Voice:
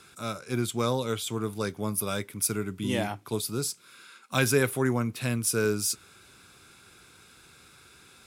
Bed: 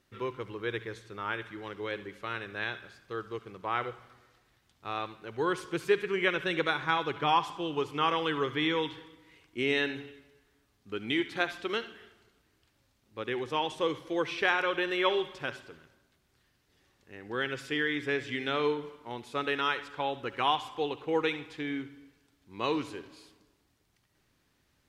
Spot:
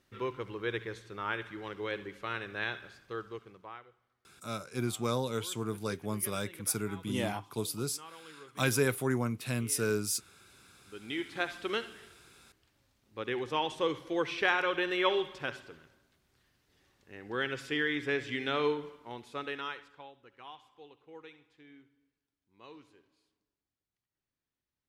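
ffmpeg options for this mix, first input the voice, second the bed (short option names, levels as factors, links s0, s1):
-filter_complex "[0:a]adelay=4250,volume=0.596[s0];[1:a]volume=10.6,afade=t=out:st=3.01:d=0.81:silence=0.0841395,afade=t=in:st=10.69:d=1.02:silence=0.0891251,afade=t=out:st=18.67:d=1.46:silence=0.0944061[s1];[s0][s1]amix=inputs=2:normalize=0"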